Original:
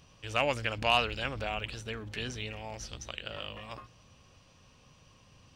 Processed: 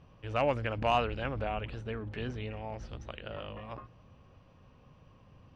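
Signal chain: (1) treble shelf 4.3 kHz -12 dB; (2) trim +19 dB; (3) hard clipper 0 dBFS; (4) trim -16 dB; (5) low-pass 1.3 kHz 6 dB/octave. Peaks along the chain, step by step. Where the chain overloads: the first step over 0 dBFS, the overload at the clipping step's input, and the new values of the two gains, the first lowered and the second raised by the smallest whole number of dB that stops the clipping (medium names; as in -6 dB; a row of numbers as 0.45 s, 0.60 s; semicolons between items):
-15.0 dBFS, +4.0 dBFS, 0.0 dBFS, -16.0 dBFS, -17.0 dBFS; step 2, 4.0 dB; step 2 +15 dB, step 4 -12 dB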